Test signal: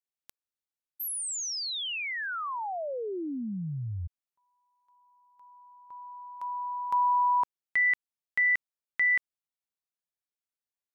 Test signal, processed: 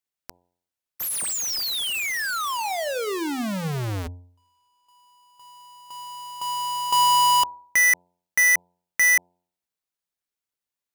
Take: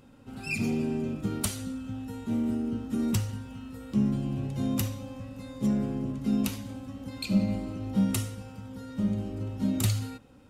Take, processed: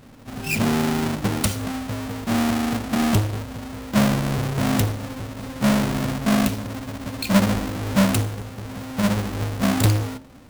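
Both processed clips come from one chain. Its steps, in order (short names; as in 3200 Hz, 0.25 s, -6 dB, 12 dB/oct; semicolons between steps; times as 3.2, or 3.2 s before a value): half-waves squared off; de-hum 88.62 Hz, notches 11; gain +4 dB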